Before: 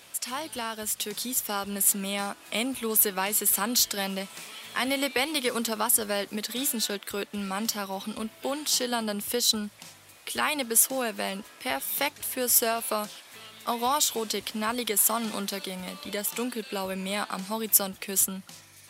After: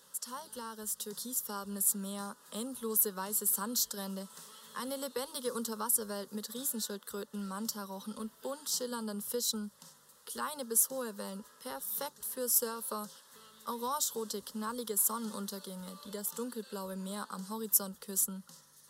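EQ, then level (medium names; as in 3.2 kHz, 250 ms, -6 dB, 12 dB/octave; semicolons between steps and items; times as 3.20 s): dynamic bell 2.2 kHz, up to -5 dB, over -41 dBFS, Q 0.95; static phaser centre 470 Hz, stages 8; -6.0 dB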